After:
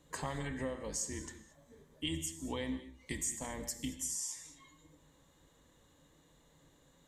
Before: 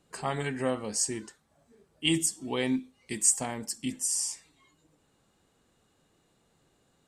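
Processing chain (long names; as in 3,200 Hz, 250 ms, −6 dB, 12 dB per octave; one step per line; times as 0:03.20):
sub-octave generator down 2 octaves, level −4 dB
EQ curve with evenly spaced ripples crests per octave 1.1, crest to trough 8 dB
downward compressor 5 to 1, threshold −38 dBFS, peak gain reduction 17.5 dB
reverb whose tail is shaped and stops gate 250 ms flat, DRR 9.5 dB
level +1 dB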